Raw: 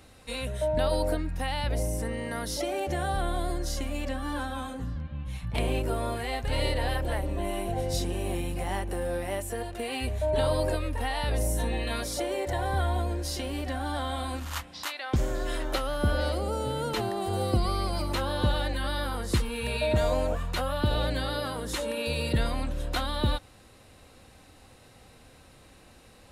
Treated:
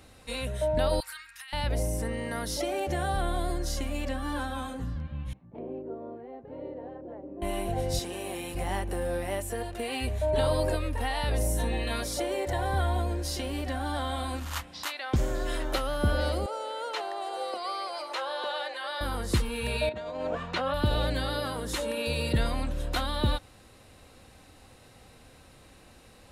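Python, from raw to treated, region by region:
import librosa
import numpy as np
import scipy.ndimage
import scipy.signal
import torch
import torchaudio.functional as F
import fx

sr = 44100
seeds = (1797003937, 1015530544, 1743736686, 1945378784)

y = fx.chain(x, sr, fx.cheby2_highpass(hz=670.0, order=4, stop_db=40),
    fx.over_compress(threshold_db=-43.0, ratio=-1.0), at=(1.0, 1.53))
y = fx.chain(y, sr, fx.ladder_bandpass(hz=420.0, resonance_pct=25),
    fx.low_shelf(hz=380.0, db=9.5), at=(5.33, 7.42))
y = fx.chain(y, sr, fx.highpass(hz=500.0, slope=6),
    fx.env_flatten(amount_pct=50), at=(7.99, 8.55))
y = fx.chain(y, sr, fx.highpass(hz=510.0, slope=24),
    fx.air_absorb(metres=61.0), at=(16.46, 19.01))
y = fx.chain(y, sr, fx.bandpass_edges(low_hz=160.0, high_hz=4100.0),
    fx.over_compress(threshold_db=-31.0, ratio=-0.5), at=(19.89, 20.74))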